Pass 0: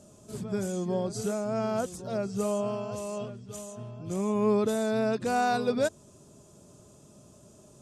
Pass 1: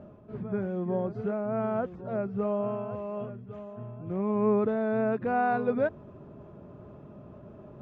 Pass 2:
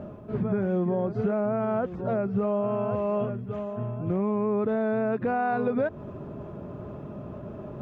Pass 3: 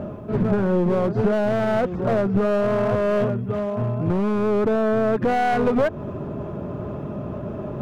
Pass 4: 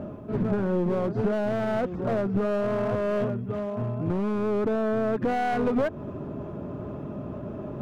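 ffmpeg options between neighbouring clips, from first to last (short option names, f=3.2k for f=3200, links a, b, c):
-af "lowpass=f=2.1k:w=0.5412,lowpass=f=2.1k:w=1.3066,areverse,acompressor=mode=upward:threshold=-38dB:ratio=2.5,areverse"
-af "alimiter=level_in=2.5dB:limit=-24dB:level=0:latency=1:release=185,volume=-2.5dB,volume=9dB"
-af "aeval=exprs='clip(val(0),-1,0.0422)':c=same,volume=8.5dB"
-af "equalizer=f=280:w=3.3:g=4.5,volume=-6dB"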